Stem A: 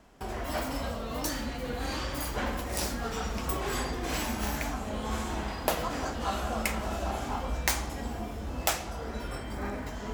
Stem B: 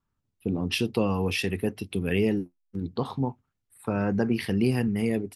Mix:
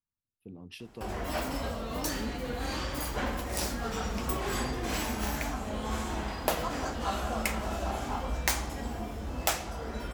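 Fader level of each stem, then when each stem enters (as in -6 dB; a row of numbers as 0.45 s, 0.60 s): -0.5 dB, -18.5 dB; 0.80 s, 0.00 s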